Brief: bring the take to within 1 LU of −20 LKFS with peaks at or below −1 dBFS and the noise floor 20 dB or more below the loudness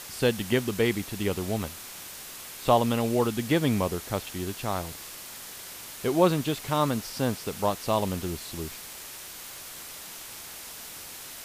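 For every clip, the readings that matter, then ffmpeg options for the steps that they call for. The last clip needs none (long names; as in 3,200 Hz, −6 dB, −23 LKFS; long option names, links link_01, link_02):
background noise floor −42 dBFS; target noise floor −50 dBFS; integrated loudness −29.5 LKFS; sample peak −7.5 dBFS; target loudness −20.0 LKFS
→ -af "afftdn=noise_reduction=8:noise_floor=-42"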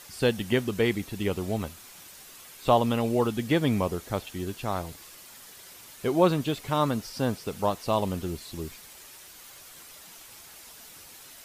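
background noise floor −49 dBFS; integrated loudness −28.0 LKFS; sample peak −7.5 dBFS; target loudness −20.0 LKFS
→ -af "volume=8dB,alimiter=limit=-1dB:level=0:latency=1"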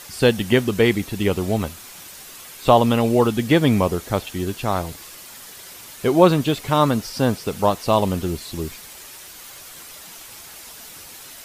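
integrated loudness −20.0 LKFS; sample peak −1.0 dBFS; background noise floor −41 dBFS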